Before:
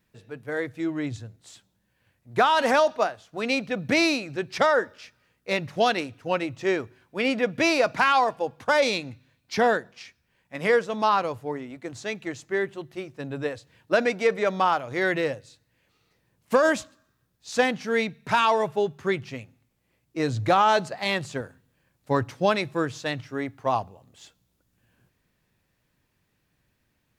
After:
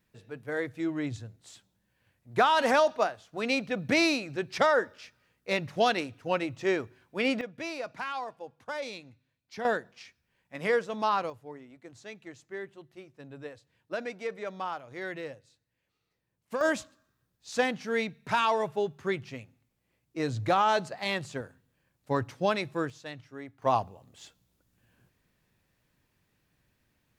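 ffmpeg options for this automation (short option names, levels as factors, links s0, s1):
-af "asetnsamples=n=441:p=0,asendcmd='7.41 volume volume -15dB;9.65 volume volume -5.5dB;11.3 volume volume -13dB;16.61 volume volume -5dB;22.9 volume volume -12.5dB;23.62 volume volume -1dB',volume=0.708"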